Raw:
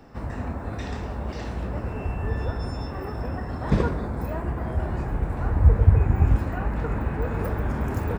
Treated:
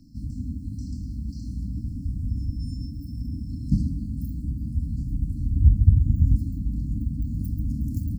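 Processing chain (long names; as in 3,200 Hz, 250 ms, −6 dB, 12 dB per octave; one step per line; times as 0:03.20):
brick-wall band-stop 310–4,100 Hz
dynamic equaliser 4,000 Hz, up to −6 dB, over −58 dBFS, Q 0.76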